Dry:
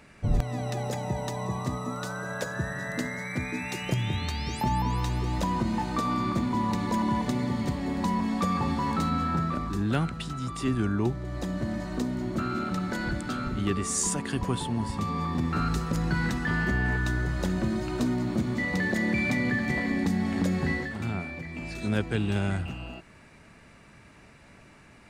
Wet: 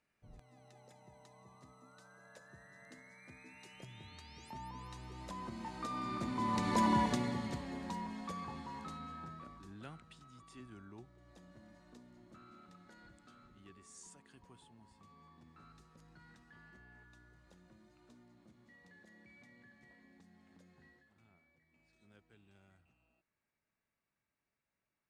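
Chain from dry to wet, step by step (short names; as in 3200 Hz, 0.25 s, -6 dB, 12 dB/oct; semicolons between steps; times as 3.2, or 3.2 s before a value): Doppler pass-by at 6.89, 8 m/s, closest 2.3 m; steep low-pass 12000 Hz; low shelf 340 Hz -6.5 dB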